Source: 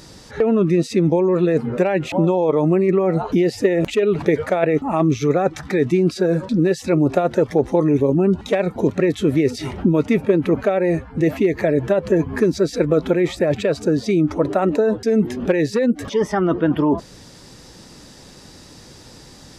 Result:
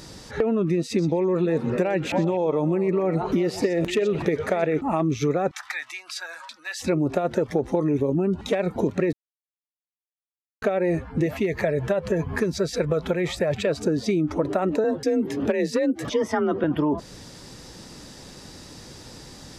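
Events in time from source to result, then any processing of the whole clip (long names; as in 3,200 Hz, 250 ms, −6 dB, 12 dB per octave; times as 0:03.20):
0:00.86–0:04.81: echo through a band-pass that steps 124 ms, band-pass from 5,100 Hz, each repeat −1.4 octaves, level −5.5 dB
0:05.51–0:06.80: inverse Chebyshev high-pass filter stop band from 460 Hz
0:09.13–0:10.62: silence
0:11.26–0:13.67: parametric band 300 Hz −11 dB 0.62 octaves
0:14.84–0:16.64: frequency shifter +36 Hz
whole clip: downward compressor, threshold −19 dBFS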